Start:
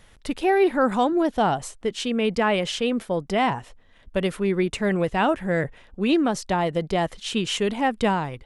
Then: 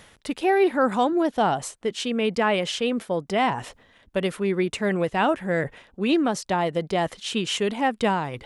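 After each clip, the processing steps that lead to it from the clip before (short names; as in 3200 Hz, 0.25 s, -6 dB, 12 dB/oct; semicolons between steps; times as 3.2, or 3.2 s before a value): reverse; upward compressor, threshold -26 dBFS; reverse; HPF 150 Hz 6 dB/oct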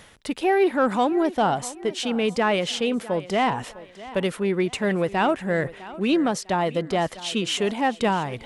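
in parallel at -8 dB: soft clip -21.5 dBFS, distortion -11 dB; on the sum: thinning echo 0.653 s, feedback 34%, high-pass 170 Hz, level -17 dB; gain -1.5 dB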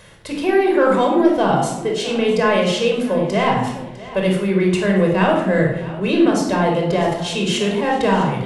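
shoebox room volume 2600 m³, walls furnished, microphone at 5.3 m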